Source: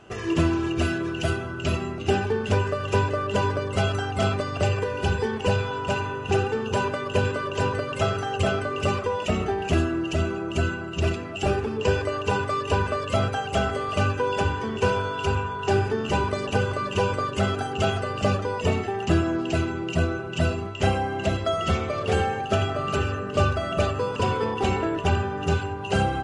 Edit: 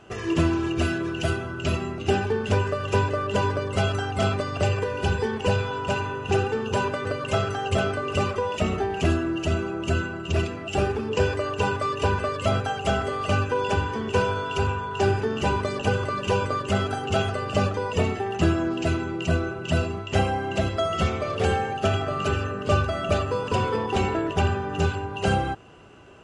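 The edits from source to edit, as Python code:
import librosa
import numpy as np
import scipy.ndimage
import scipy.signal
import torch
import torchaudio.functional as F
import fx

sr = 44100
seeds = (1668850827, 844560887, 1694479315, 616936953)

y = fx.edit(x, sr, fx.cut(start_s=7.05, length_s=0.68), tone=tone)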